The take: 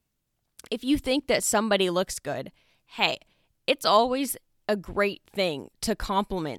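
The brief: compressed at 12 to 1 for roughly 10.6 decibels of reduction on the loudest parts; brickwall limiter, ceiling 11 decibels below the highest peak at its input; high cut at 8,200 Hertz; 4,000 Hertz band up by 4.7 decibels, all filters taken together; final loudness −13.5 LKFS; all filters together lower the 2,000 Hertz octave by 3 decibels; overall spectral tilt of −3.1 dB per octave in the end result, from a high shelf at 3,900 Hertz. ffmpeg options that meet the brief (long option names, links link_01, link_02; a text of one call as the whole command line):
ffmpeg -i in.wav -af "lowpass=8200,equalizer=frequency=2000:width_type=o:gain=-8,highshelf=frequency=3900:gain=6.5,equalizer=frequency=4000:width_type=o:gain=5,acompressor=threshold=-26dB:ratio=12,volume=20.5dB,alimiter=limit=-0.5dB:level=0:latency=1" out.wav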